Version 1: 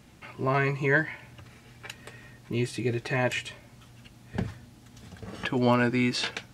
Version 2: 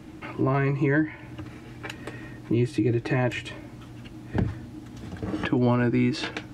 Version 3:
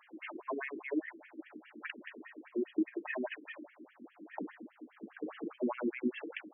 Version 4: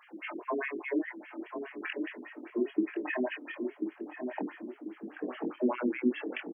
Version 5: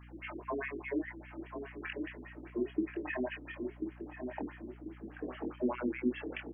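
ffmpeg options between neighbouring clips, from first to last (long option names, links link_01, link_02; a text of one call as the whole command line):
ffmpeg -i in.wav -filter_complex "[0:a]equalizer=frequency=310:width_type=o:width=0.26:gain=13.5,acrossover=split=120[link_01][link_02];[link_02]acompressor=threshold=-34dB:ratio=2.5[link_03];[link_01][link_03]amix=inputs=2:normalize=0,highshelf=frequency=2700:gain=-9.5,volume=8.5dB" out.wav
ffmpeg -i in.wav -af "alimiter=limit=-18.5dB:level=0:latency=1:release=35,afftfilt=real='re*between(b*sr/1024,290*pow(2400/290,0.5+0.5*sin(2*PI*4.9*pts/sr))/1.41,290*pow(2400/290,0.5+0.5*sin(2*PI*4.9*pts/sr))*1.41)':imag='im*between(b*sr/1024,290*pow(2400/290,0.5+0.5*sin(2*PI*4.9*pts/sr))/1.41,290*pow(2400/290,0.5+0.5*sin(2*PI*4.9*pts/sr))*1.41)':win_size=1024:overlap=0.75,volume=-2dB" out.wav
ffmpeg -i in.wav -filter_complex "[0:a]asplit=2[link_01][link_02];[link_02]adelay=24,volume=-5dB[link_03];[link_01][link_03]amix=inputs=2:normalize=0,asplit=2[link_04][link_05];[link_05]adelay=1040,lowpass=frequency=810:poles=1,volume=-5dB,asplit=2[link_06][link_07];[link_07]adelay=1040,lowpass=frequency=810:poles=1,volume=0.41,asplit=2[link_08][link_09];[link_09]adelay=1040,lowpass=frequency=810:poles=1,volume=0.41,asplit=2[link_10][link_11];[link_11]adelay=1040,lowpass=frequency=810:poles=1,volume=0.41,asplit=2[link_12][link_13];[link_13]adelay=1040,lowpass=frequency=810:poles=1,volume=0.41[link_14];[link_06][link_08][link_10][link_12][link_14]amix=inputs=5:normalize=0[link_15];[link_04][link_15]amix=inputs=2:normalize=0,volume=3.5dB" out.wav
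ffmpeg -i in.wav -af "aeval=exprs='val(0)+0.00398*(sin(2*PI*60*n/s)+sin(2*PI*2*60*n/s)/2+sin(2*PI*3*60*n/s)/3+sin(2*PI*4*60*n/s)/4+sin(2*PI*5*60*n/s)/5)':channel_layout=same,volume=-4dB" out.wav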